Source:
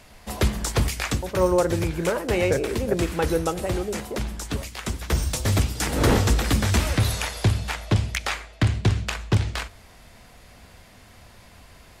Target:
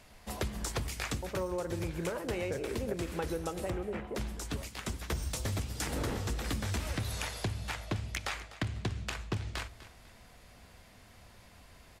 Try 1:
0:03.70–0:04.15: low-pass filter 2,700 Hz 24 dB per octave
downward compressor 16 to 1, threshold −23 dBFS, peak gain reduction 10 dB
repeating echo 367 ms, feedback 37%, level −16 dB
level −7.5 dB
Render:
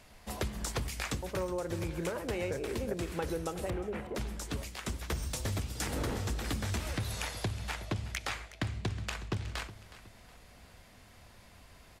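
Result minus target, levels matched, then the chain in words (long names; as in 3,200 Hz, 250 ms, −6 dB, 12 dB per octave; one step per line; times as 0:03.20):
echo 118 ms late
0:03.70–0:04.15: low-pass filter 2,700 Hz 24 dB per octave
downward compressor 16 to 1, threshold −23 dBFS, peak gain reduction 10 dB
repeating echo 249 ms, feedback 37%, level −16 dB
level −7.5 dB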